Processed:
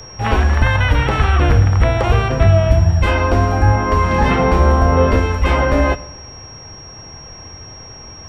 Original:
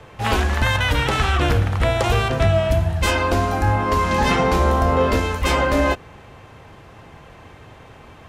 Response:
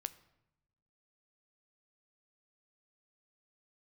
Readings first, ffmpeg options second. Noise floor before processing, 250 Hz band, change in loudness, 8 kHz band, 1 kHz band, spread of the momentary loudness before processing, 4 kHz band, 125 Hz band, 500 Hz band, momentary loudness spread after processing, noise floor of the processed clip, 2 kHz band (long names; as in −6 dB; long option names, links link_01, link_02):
−44 dBFS, +3.5 dB, +4.5 dB, can't be measured, +2.5 dB, 3 LU, −1.5 dB, +7.0 dB, +3.0 dB, 21 LU, −36 dBFS, +2.0 dB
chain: -filter_complex "[0:a]aeval=exprs='val(0)+0.0316*sin(2*PI*5600*n/s)':channel_layout=same,asplit=2[link_01][link_02];[1:a]atrim=start_sample=2205,lowshelf=frequency=99:gain=8.5[link_03];[link_02][link_03]afir=irnorm=-1:irlink=0,volume=12.5dB[link_04];[link_01][link_04]amix=inputs=2:normalize=0,acrossover=split=3000[link_05][link_06];[link_06]acompressor=threshold=-31dB:ratio=4:attack=1:release=60[link_07];[link_05][link_07]amix=inputs=2:normalize=0,volume=-10dB"